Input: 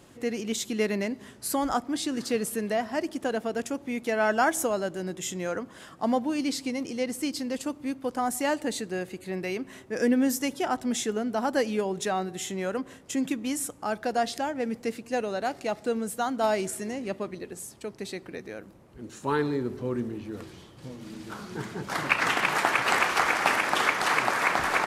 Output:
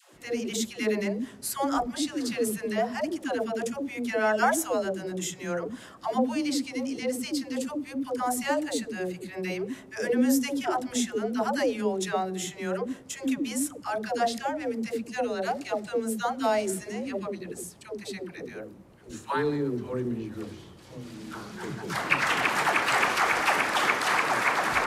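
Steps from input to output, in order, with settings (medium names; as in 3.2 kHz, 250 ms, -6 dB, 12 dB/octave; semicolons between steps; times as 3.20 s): phase dispersion lows, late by 142 ms, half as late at 460 Hz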